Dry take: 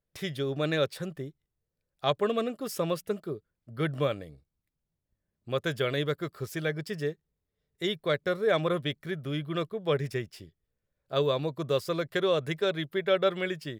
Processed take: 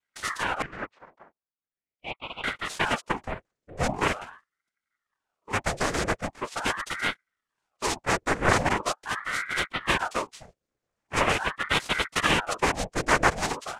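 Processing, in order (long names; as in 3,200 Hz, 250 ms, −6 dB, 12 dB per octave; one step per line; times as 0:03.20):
cochlear-implant simulation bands 3
0:00.62–0:02.44: four-pole ladder band-pass 960 Hz, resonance 45%
ring modulator whose carrier an LFO sweeps 970 Hz, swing 85%, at 0.42 Hz
level +5.5 dB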